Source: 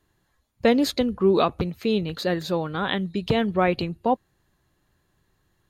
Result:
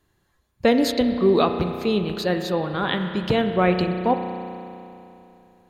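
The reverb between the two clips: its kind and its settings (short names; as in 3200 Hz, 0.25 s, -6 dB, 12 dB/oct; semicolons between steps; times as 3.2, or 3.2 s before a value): spring tank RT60 2.9 s, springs 33 ms, chirp 30 ms, DRR 6.5 dB; gain +1 dB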